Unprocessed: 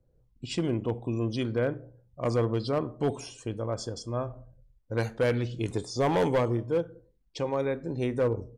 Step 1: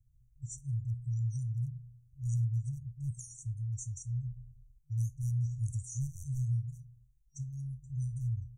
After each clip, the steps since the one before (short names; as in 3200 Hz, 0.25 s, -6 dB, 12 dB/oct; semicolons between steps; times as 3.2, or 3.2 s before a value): FFT band-reject 140–5700 Hz; gain +1 dB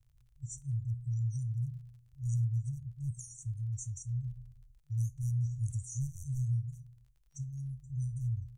crackle 38/s -59 dBFS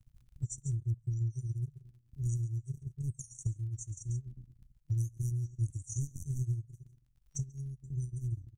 dynamic EQ 140 Hz, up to -4 dB, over -43 dBFS, Q 0.97; echo 0.139 s -11.5 dB; transient shaper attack +10 dB, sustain -11 dB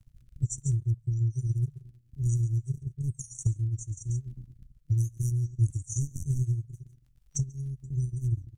rotary speaker horn 1.1 Hz, later 6.7 Hz, at 5.32; gain +8 dB